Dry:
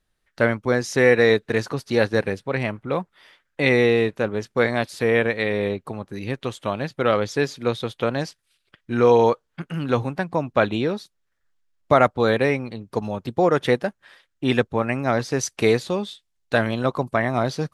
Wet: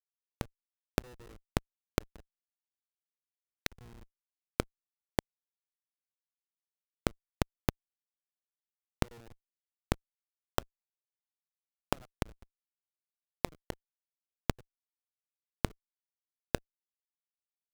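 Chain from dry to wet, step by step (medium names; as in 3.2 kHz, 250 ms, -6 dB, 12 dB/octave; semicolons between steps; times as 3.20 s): speakerphone echo 250 ms, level -11 dB; Schmitt trigger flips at -12 dBFS; inverted gate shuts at -36 dBFS, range -36 dB; trim +7 dB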